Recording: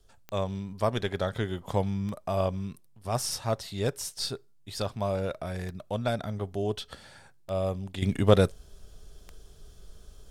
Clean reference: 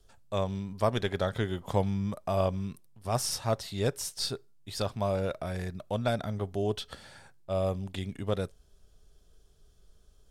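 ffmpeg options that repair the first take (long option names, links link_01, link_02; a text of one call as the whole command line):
ffmpeg -i in.wav -af "adeclick=threshold=4,asetnsamples=nb_out_samples=441:pad=0,asendcmd='8.02 volume volume -11dB',volume=0dB" out.wav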